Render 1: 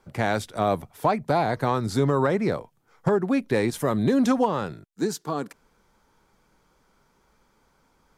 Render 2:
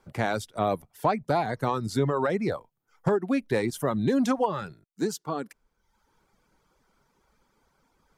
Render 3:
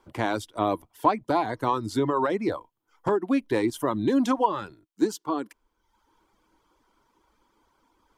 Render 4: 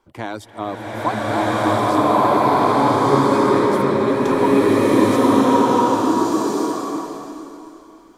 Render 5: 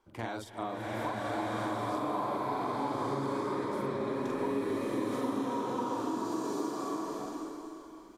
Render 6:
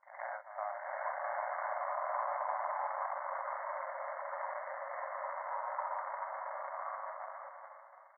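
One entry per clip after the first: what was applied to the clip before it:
reverb removal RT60 0.84 s; trim -2 dB
graphic EQ with 31 bands 160 Hz -12 dB, 315 Hz +11 dB, 1 kHz +9 dB, 3.15 kHz +6 dB; trim -1.5 dB
swelling reverb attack 1450 ms, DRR -12 dB; trim -1.5 dB
compression 5:1, threshold -26 dBFS, peak gain reduction 15 dB; doubling 44 ms -3 dB; trim -7.5 dB
cycle switcher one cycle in 3, muted; brick-wall FIR band-pass 540–2200 Hz; reverse echo 117 ms -12.5 dB

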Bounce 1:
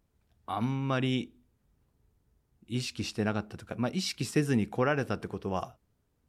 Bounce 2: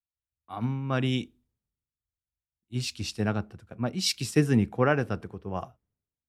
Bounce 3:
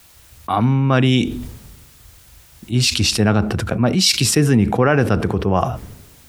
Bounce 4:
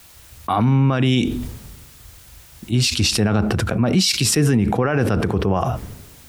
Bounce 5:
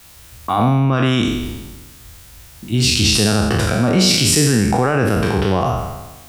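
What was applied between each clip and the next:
peaking EQ 95 Hz +4 dB 1.9 oct; three bands expanded up and down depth 100%
loudness maximiser +12.5 dB; level flattener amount 70%; trim -5 dB
peak limiter -10.5 dBFS, peak gain reduction 9 dB; trim +2 dB
spectral sustain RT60 1.16 s

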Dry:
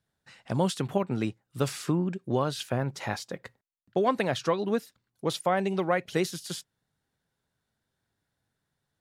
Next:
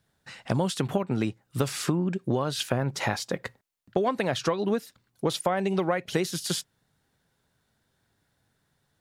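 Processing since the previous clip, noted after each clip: compression 6:1, threshold -31 dBFS, peak gain reduction 11.5 dB; trim +8.5 dB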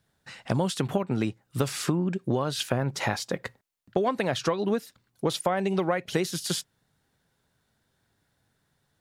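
no audible change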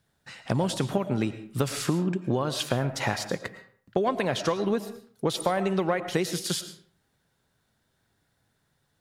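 algorithmic reverb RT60 0.51 s, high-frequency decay 0.7×, pre-delay 70 ms, DRR 11 dB

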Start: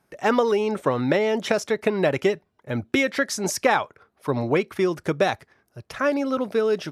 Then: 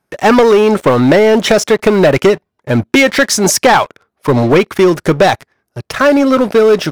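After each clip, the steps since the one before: waveshaping leveller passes 3; trim +4.5 dB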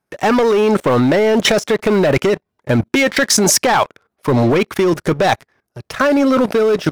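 level held to a coarse grid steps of 16 dB; trim +3.5 dB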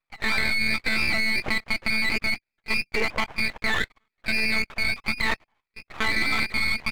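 frequency inversion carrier 2.6 kHz; monotone LPC vocoder at 8 kHz 220 Hz; half-wave rectifier; trim -7.5 dB

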